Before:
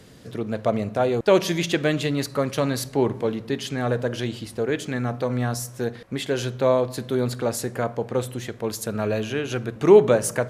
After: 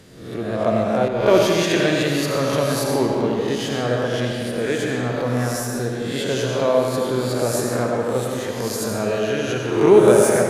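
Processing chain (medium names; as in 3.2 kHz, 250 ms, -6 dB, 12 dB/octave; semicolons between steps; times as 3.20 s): reverse spectral sustain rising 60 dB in 0.72 s; algorithmic reverb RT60 2.1 s, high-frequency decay 0.75×, pre-delay 45 ms, DRR 0 dB; 1.08–1.74 s: three bands expanded up and down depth 70%; trim -1 dB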